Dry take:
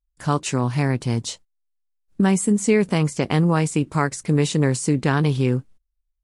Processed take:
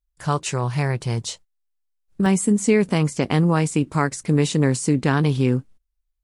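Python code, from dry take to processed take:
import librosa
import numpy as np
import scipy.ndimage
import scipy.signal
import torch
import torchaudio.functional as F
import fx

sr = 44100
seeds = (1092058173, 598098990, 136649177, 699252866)

y = fx.peak_eq(x, sr, hz=260.0, db=fx.steps((0.0, -14.0), (2.26, 2.5)), octaves=0.31)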